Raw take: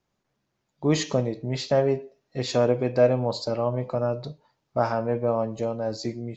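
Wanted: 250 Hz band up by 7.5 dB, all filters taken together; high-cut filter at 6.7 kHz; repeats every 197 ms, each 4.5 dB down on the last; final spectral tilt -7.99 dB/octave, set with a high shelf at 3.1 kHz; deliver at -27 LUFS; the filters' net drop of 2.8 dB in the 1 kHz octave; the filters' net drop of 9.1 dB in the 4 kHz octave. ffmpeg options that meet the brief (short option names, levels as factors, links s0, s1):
-af "lowpass=6700,equalizer=f=250:t=o:g=9,equalizer=f=1000:t=o:g=-4,highshelf=f=3100:g=-8,equalizer=f=4000:t=o:g=-4,aecho=1:1:197|394|591|788|985|1182|1379|1576|1773:0.596|0.357|0.214|0.129|0.0772|0.0463|0.0278|0.0167|0.01,volume=0.531"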